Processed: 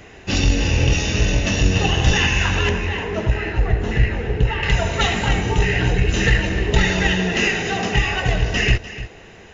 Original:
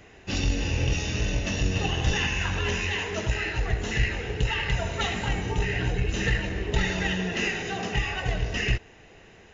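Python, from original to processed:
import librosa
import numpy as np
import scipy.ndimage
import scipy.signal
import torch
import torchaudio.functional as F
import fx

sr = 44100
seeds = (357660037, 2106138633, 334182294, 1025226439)

p1 = fx.lowpass(x, sr, hz=1100.0, slope=6, at=(2.69, 4.63))
p2 = p1 + fx.echo_single(p1, sr, ms=298, db=-14.5, dry=0)
y = F.gain(torch.from_numpy(p2), 8.5).numpy()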